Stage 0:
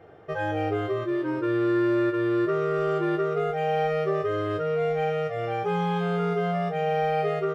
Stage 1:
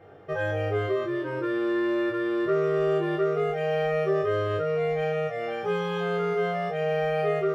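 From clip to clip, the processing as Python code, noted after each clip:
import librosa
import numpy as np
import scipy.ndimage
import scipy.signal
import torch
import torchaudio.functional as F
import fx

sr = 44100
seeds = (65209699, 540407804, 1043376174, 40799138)

y = fx.room_early_taps(x, sr, ms=(21, 31), db=(-3.5, -10.5))
y = y * librosa.db_to_amplitude(-1.5)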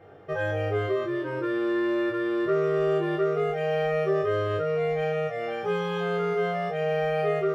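y = x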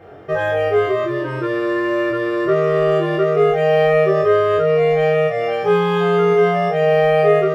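y = fx.doubler(x, sr, ms=24.0, db=-3.5)
y = y * librosa.db_to_amplitude(8.5)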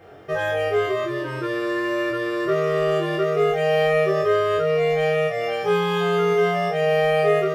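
y = fx.high_shelf(x, sr, hz=3100.0, db=11.5)
y = y * librosa.db_to_amplitude(-5.5)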